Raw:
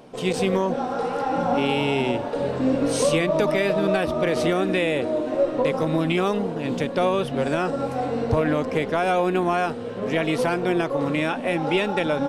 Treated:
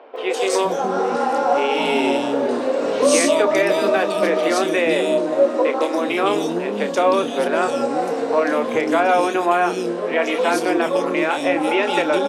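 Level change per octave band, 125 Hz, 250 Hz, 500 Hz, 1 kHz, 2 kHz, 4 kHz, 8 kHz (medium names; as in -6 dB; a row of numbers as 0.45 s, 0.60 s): -10.5 dB, +1.5 dB, +4.5 dB, +6.0 dB, +5.0 dB, +4.5 dB, +8.5 dB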